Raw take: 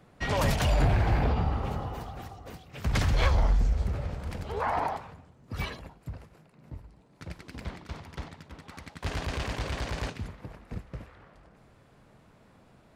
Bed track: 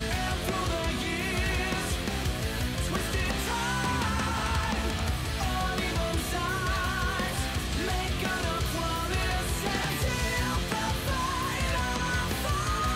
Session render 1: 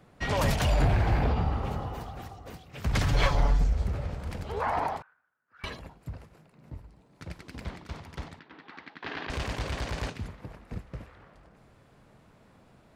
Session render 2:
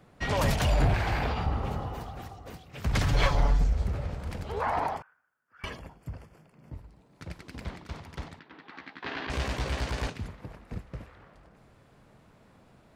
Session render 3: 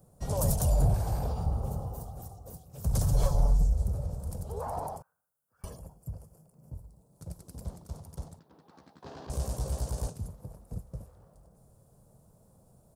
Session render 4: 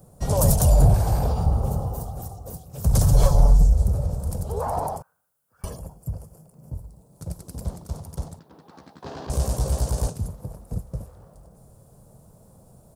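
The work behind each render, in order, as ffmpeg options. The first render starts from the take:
-filter_complex "[0:a]asettb=1/sr,asplit=3[s0][s1][s2];[s0]atrim=end=3.064[s3];[s1]atrim=start=3.06:end=3.64,asetpts=PTS-STARTPTS,afade=t=in:d=0.004:c=qsin,afade=t=out:st=0.576:d=0.004:c=qsin,aecho=1:1:7:0.81,atrim=end_sample=25578[s4];[s2]atrim=start=3.636[s5];[s3][s4]acrossfade=d=0.004:c1=hsin:c2=qsin[s6];[s6][s5]acrossfade=d=0.004:c1=qsin:c2=hsin,asettb=1/sr,asplit=3[s7][s8][s9];[s7]atrim=end=5.024[s10];[s8]atrim=start=5.02:end=5.64,asetpts=PTS-STARTPTS,afade=t=in:d=0.004:c=qsin,afade=t=out:st=0.616:d=0.004:c=qsin,bandpass=f=1500:t=q:w=11[s11];[s9]atrim=start=5.636[s12];[s10][s11]acrossfade=d=0.004:c1=hsin:c2=qsin[s13];[s13][s12]acrossfade=d=0.004:c1=qsin:c2=hsin,asettb=1/sr,asplit=3[s14][s15][s16];[s14]atrim=end=8.394[s17];[s15]atrim=start=8.39:end=9.3,asetpts=PTS-STARTPTS,afade=t=in:d=0.004:c=qsin,afade=t=out:st=0.906:d=0.004:c=qsin,highpass=290,equalizer=f=310:t=q:w=4:g=5,equalizer=f=570:t=q:w=4:g=-8,equalizer=f=1700:t=q:w=4:g=5,lowpass=f=4100:w=0.5412,lowpass=f=4100:w=1.3066[s18];[s16]atrim=start=9.296[s19];[s17][s18]acrossfade=d=0.004:c1=hsin:c2=qsin[s20];[s20][s19]acrossfade=d=0.004:c1=qsin:c2=hsin"
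-filter_complex "[0:a]asettb=1/sr,asplit=3[s0][s1][s2];[s0]atrim=end=0.944[s3];[s1]atrim=start=0.94:end=1.46,asetpts=PTS-STARTPTS,afade=t=in:d=0.004:c=qsin,afade=t=out:st=0.516:d=0.004:c=qsin,tiltshelf=f=830:g=-5.5[s4];[s2]atrim=start=1.456[s5];[s3][s4]acrossfade=d=0.004:c1=hsin:c2=qsin[s6];[s6][s5]acrossfade=d=0.004:c1=qsin:c2=hsin,asettb=1/sr,asplit=3[s7][s8][s9];[s7]atrim=end=4.944[s10];[s8]atrim=start=4.94:end=6.73,asetpts=PTS-STARTPTS,afade=t=in:d=0.004:c=qsin,afade=t=out:st=1.786:d=0.004:c=qsin,asuperstop=centerf=3900:order=4:qfactor=5.8[s11];[s9]atrim=start=6.726[s12];[s10][s11]acrossfade=d=0.004:c1=hsin:c2=qsin[s13];[s13][s12]acrossfade=d=0.004:c1=qsin:c2=hsin,asettb=1/sr,asplit=3[s14][s15][s16];[s14]atrim=end=8.734[s17];[s15]atrim=start=8.73:end=10.07,asetpts=PTS-STARTPTS,afade=t=in:d=0.004:c=qsin,afade=t=out:st=1.336:d=0.004:c=qsin,asplit=2[s18][s19];[s19]adelay=15,volume=0.596[s20];[s18][s20]amix=inputs=2:normalize=0,atrim=end_sample=59094[s21];[s16]atrim=start=10.066[s22];[s17][s21]acrossfade=d=0.004:c1=hsin:c2=qsin[s23];[s23][s22]acrossfade=d=0.004:c1=qsin:c2=hsin"
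-af "firequalizer=gain_entry='entry(160,0);entry(280,-10);entry(520,-2);entry(2000,-27);entry(5300,-4);entry(9200,10)':delay=0.05:min_phase=1"
-af "volume=2.82"

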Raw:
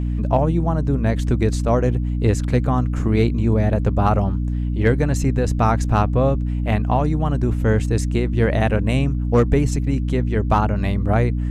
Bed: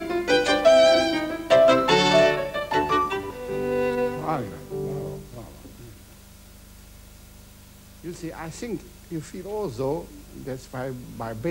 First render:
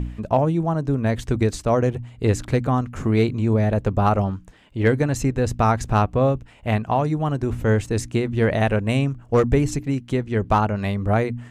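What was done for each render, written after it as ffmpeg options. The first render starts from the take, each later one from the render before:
-af "bandreject=f=60:t=h:w=4,bandreject=f=120:t=h:w=4,bandreject=f=180:t=h:w=4,bandreject=f=240:t=h:w=4,bandreject=f=300:t=h:w=4"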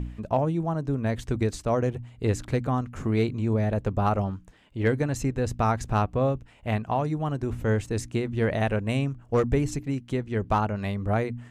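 -af "volume=0.531"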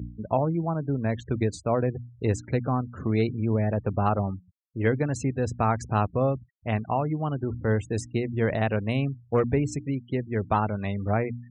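-af "highpass=f=69:w=0.5412,highpass=f=69:w=1.3066,afftfilt=real='re*gte(hypot(re,im),0.0126)':imag='im*gte(hypot(re,im),0.0126)':win_size=1024:overlap=0.75"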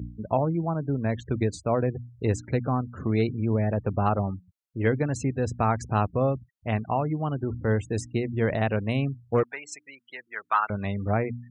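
-filter_complex "[0:a]asettb=1/sr,asplit=3[s0][s1][s2];[s0]atrim=end=9.434[s3];[s1]atrim=start=9.43:end=10.7,asetpts=PTS-STARTPTS,afade=t=in:d=0.004:c=qsin,afade=t=out:st=1.266:d=0.004:c=qsin,highpass=f=1300:t=q:w=2.4[s4];[s2]atrim=start=10.696[s5];[s3][s4]acrossfade=d=0.004:c1=hsin:c2=qsin[s6];[s6][s5]acrossfade=d=0.004:c1=qsin:c2=hsin"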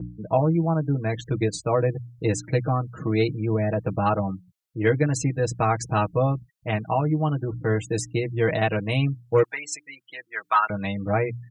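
-af "aecho=1:1:6.3:0.9,adynamicequalizer=threshold=0.0126:dfrequency=2300:dqfactor=0.7:tfrequency=2300:tqfactor=0.7:attack=5:release=100:ratio=0.375:range=3:mode=boostabove:tftype=highshelf"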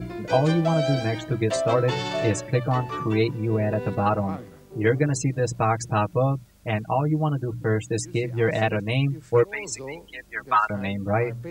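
-filter_complex "[1:a]volume=0.316[s0];[0:a][s0]amix=inputs=2:normalize=0"

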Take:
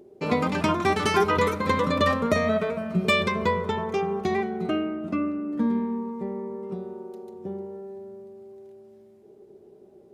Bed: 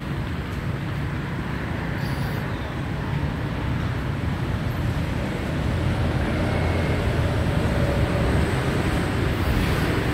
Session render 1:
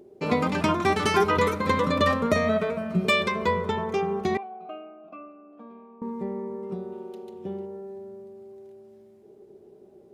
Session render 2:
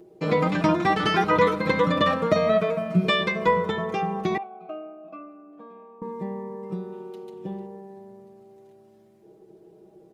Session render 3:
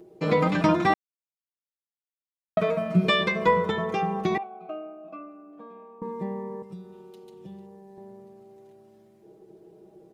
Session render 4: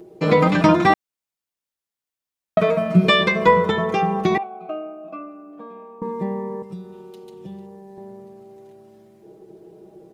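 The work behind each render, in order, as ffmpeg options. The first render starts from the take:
-filter_complex "[0:a]asettb=1/sr,asplit=3[s0][s1][s2];[s0]atrim=end=3.074[s3];[s1]atrim=start=3.07:end=3.48,asetpts=PTS-STARTPTS,afade=t=in:d=0.004:c=qsin,afade=t=out:st=0.406:d=0.004:c=qsin,lowshelf=f=130:g=-11.5[s4];[s2]atrim=start=3.476[s5];[s3][s4]acrossfade=d=0.004:c1=hsin:c2=qsin[s6];[s6][s5]acrossfade=d=0.004:c1=qsin:c2=hsin,asettb=1/sr,asplit=3[s7][s8][s9];[s7]atrim=end=4.374[s10];[s8]atrim=start=4.37:end=6.02,asetpts=PTS-STARTPTS,afade=t=in:d=0.004:c=qsin,afade=t=out:st=1.646:d=0.004:c=qsin,asplit=3[s11][s12][s13];[s11]bandpass=f=730:t=q:w=8,volume=1[s14];[s12]bandpass=f=1090:t=q:w=8,volume=0.501[s15];[s13]bandpass=f=2440:t=q:w=8,volume=0.355[s16];[s14][s15][s16]amix=inputs=3:normalize=0[s17];[s9]atrim=start=6.016[s18];[s10][s17]acrossfade=d=0.004:c1=hsin:c2=qsin[s19];[s19][s18]acrossfade=d=0.004:c1=qsin:c2=hsin,asettb=1/sr,asplit=3[s20][s21][s22];[s20]atrim=end=6.924[s23];[s21]atrim=start=6.92:end=7.66,asetpts=PTS-STARTPTS,afade=t=in:d=0.004:c=qsin,afade=t=out:st=0.736:d=0.004:c=qsin,equalizer=f=3000:t=o:w=0.92:g=10.5[s24];[s22]atrim=start=7.656[s25];[s23][s24]acrossfade=d=0.004:c1=hsin:c2=qsin[s26];[s26][s25]acrossfade=d=0.004:c1=qsin:c2=hsin"
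-filter_complex "[0:a]aecho=1:1:6.2:0.78,acrossover=split=5000[s0][s1];[s1]acompressor=threshold=0.00141:ratio=4:attack=1:release=60[s2];[s0][s2]amix=inputs=2:normalize=0"
-filter_complex "[0:a]asettb=1/sr,asplit=3[s0][s1][s2];[s0]atrim=end=6.624[s3];[s1]atrim=start=6.62:end=7.98,asetpts=PTS-STARTPTS,afade=t=in:d=0.004:c=qsin,afade=t=out:st=1.356:d=0.004:c=qsin,acrossover=split=140|3000[s4][s5][s6];[s5]acompressor=threshold=0.00562:ratio=6:attack=3.2:release=140:knee=2.83:detection=peak[s7];[s4][s7][s6]amix=inputs=3:normalize=0[s8];[s2]atrim=start=7.976[s9];[s3][s8]acrossfade=d=0.004:c1=hsin:c2=qsin[s10];[s10][s9]acrossfade=d=0.004:c1=qsin:c2=hsin,asplit=3[s11][s12][s13];[s11]atrim=end=0.94,asetpts=PTS-STARTPTS,afade=t=out:st=0.936:d=0.004:c=hsin[s14];[s12]atrim=start=0.94:end=2.57,asetpts=PTS-STARTPTS,volume=0[s15];[s13]atrim=start=2.57,asetpts=PTS-STARTPTS,afade=t=in:d=0.004:c=hsin[s16];[s14][s15][s16]concat=n=3:v=0:a=1"
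-af "volume=2.11"

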